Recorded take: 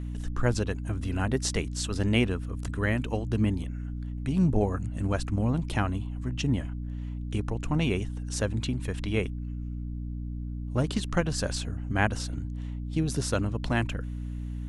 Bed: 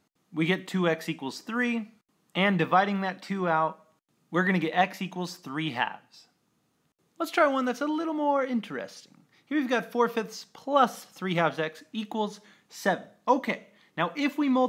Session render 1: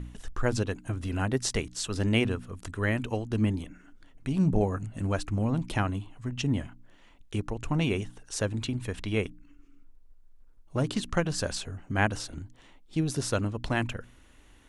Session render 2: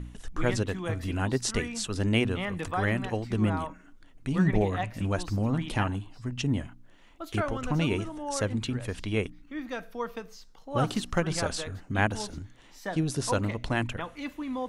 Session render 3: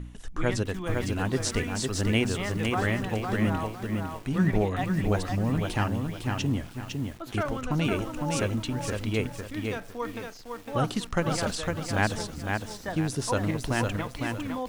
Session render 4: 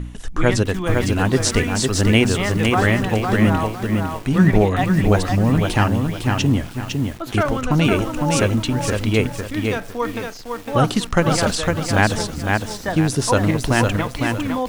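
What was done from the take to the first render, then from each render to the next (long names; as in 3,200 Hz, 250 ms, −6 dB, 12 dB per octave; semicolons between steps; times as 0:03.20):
hum removal 60 Hz, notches 5
mix in bed −9.5 dB
feedback echo at a low word length 506 ms, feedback 35%, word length 8 bits, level −4 dB
level +10 dB; brickwall limiter −2 dBFS, peak gain reduction 1.5 dB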